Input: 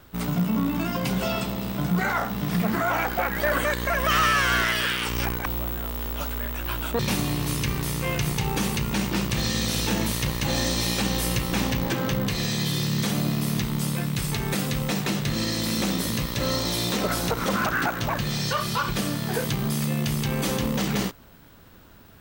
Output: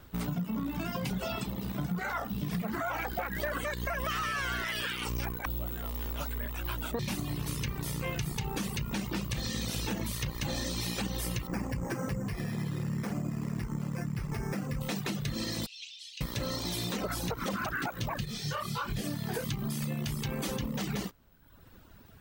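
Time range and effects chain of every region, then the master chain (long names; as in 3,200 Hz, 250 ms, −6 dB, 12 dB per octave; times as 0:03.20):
0:11.47–0:14.81: low-pass filter 2,300 Hz 24 dB per octave + bad sample-rate conversion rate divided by 6×, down none, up hold
0:15.66–0:16.21: Chebyshev high-pass filter 2,700 Hz, order 4 + high-frequency loss of the air 140 metres
0:18.25–0:19.04: flutter between parallel walls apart 4.9 metres, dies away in 0.22 s + micro pitch shift up and down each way 48 cents
whole clip: reverb reduction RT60 0.96 s; low-shelf EQ 190 Hz +4.5 dB; downward compressor, threshold −26 dBFS; level −4 dB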